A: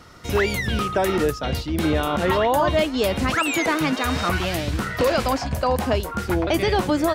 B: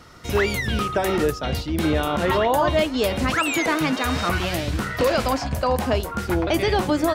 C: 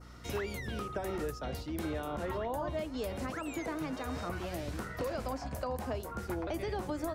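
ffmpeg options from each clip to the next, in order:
-af "bandreject=f=94.51:t=h:w=4,bandreject=f=189.02:t=h:w=4,bandreject=f=283.53:t=h:w=4,bandreject=f=378.04:t=h:w=4,bandreject=f=472.55:t=h:w=4,bandreject=f=567.06:t=h:w=4,bandreject=f=661.57:t=h:w=4,bandreject=f=756.08:t=h:w=4,bandreject=f=850.59:t=h:w=4,bandreject=f=945.1:t=h:w=4,bandreject=f=1.03961k:t=h:w=4,bandreject=f=1.13412k:t=h:w=4,bandreject=f=1.22863k:t=h:w=4,bandreject=f=1.32314k:t=h:w=4,bandreject=f=1.41765k:t=h:w=4"
-filter_complex "[0:a]acrossover=split=100|310|700[a][b][c][d];[a]acompressor=threshold=-35dB:ratio=4[e];[b]acompressor=threshold=-37dB:ratio=4[f];[c]acompressor=threshold=-30dB:ratio=4[g];[d]acompressor=threshold=-33dB:ratio=4[h];[e][f][g][h]amix=inputs=4:normalize=0,adynamicequalizer=threshold=0.00398:dfrequency=3200:dqfactor=1:tfrequency=3200:tqfactor=1:attack=5:release=100:ratio=0.375:range=3:mode=cutabove:tftype=bell,aeval=exprs='val(0)+0.00708*(sin(2*PI*60*n/s)+sin(2*PI*2*60*n/s)/2+sin(2*PI*3*60*n/s)/3+sin(2*PI*4*60*n/s)/4+sin(2*PI*5*60*n/s)/5)':c=same,volume=-8.5dB"

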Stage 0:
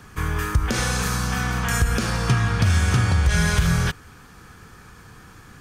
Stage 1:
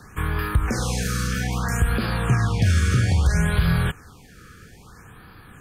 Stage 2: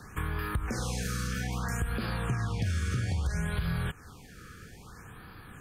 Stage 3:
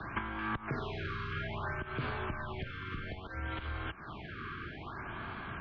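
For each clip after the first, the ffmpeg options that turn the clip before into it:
-filter_complex "[0:a]acrossover=split=690[a][b];[b]alimiter=limit=-21dB:level=0:latency=1:release=21[c];[a][c]amix=inputs=2:normalize=0,afftfilt=real='re*(1-between(b*sr/1024,770*pow(7200/770,0.5+0.5*sin(2*PI*0.61*pts/sr))/1.41,770*pow(7200/770,0.5+0.5*sin(2*PI*0.61*pts/sr))*1.41))':imag='im*(1-between(b*sr/1024,770*pow(7200/770,0.5+0.5*sin(2*PI*0.61*pts/sr))/1.41,770*pow(7200/770,0.5+0.5*sin(2*PI*0.61*pts/sr))*1.41))':win_size=1024:overlap=0.75"
-af "acompressor=threshold=-29dB:ratio=2.5,volume=-2.5dB"
-af "acompressor=threshold=-38dB:ratio=12,highpass=f=170:t=q:w=0.5412,highpass=f=170:t=q:w=1.307,lowpass=f=3.5k:t=q:w=0.5176,lowpass=f=3.5k:t=q:w=0.7071,lowpass=f=3.5k:t=q:w=1.932,afreqshift=-93,volume=9dB"

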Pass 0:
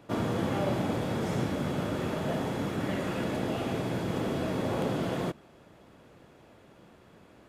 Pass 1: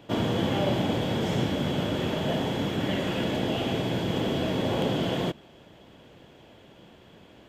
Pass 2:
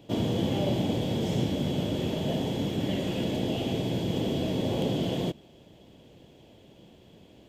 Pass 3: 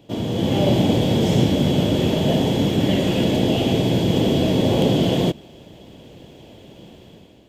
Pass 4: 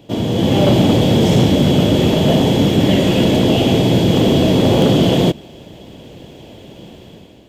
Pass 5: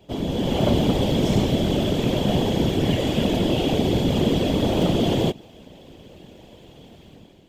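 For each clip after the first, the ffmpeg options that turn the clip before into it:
-af "equalizer=f=1.25k:t=o:w=0.33:g=-6,equalizer=f=3.15k:t=o:w=0.33:g=10,equalizer=f=10k:t=o:w=0.33:g=-9,volume=3.5dB"
-af "equalizer=f=1.4k:w=0.97:g=-12.5"
-af "dynaudnorm=f=130:g=7:m=8.5dB,volume=2dB"
-af "asoftclip=type=hard:threshold=-12dB,volume=6dB"
-af "afftfilt=real='hypot(re,im)*cos(2*PI*random(0))':imag='hypot(re,im)*sin(2*PI*random(1))':win_size=512:overlap=0.75,volume=-2dB"

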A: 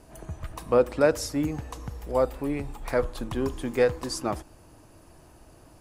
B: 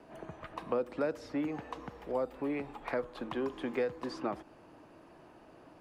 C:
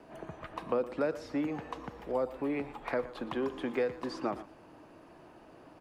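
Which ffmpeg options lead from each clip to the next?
-filter_complex "[0:a]acrossover=split=340|5100[a][b][c];[a]acompressor=threshold=-37dB:ratio=4[d];[b]acompressor=threshold=-34dB:ratio=4[e];[c]acompressor=threshold=-49dB:ratio=4[f];[d][e][f]amix=inputs=3:normalize=0,acrossover=split=160 3700:gain=0.112 1 0.1[g][h][i];[g][h][i]amix=inputs=3:normalize=0"
-af "aecho=1:1:117:0.168,volume=1.5dB"

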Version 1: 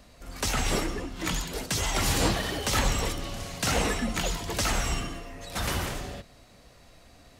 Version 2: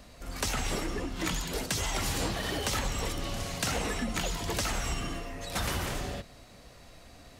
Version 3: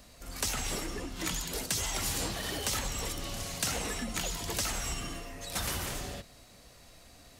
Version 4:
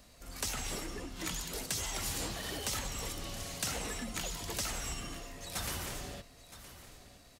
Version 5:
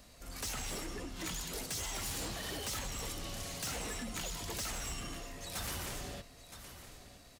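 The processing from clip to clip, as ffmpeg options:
-af "acompressor=threshold=-30dB:ratio=6,volume=2dB"
-af "highshelf=f=4.6k:g=9,volume=-4.5dB"
-af "aecho=1:1:967:0.188,volume=-4dB"
-af "asoftclip=type=tanh:threshold=-35dB,volume=1dB"

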